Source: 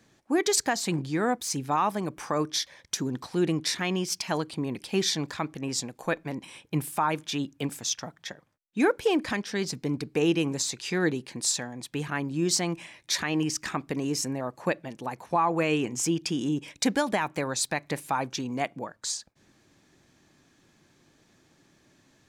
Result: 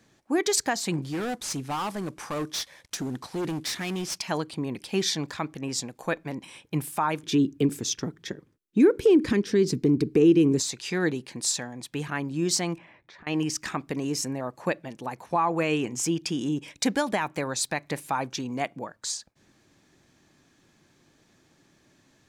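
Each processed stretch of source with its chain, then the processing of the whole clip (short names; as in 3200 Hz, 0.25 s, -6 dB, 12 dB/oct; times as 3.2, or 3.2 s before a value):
1.02–4.18 CVSD 64 kbps + hard clip -26.5 dBFS
7.23–10.6 resonant low shelf 510 Hz +8.5 dB, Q 3 + compressor 2:1, threshold -19 dBFS
12.78–13.27 LPF 1600 Hz + compressor 10:1, threshold -47 dBFS
whole clip: dry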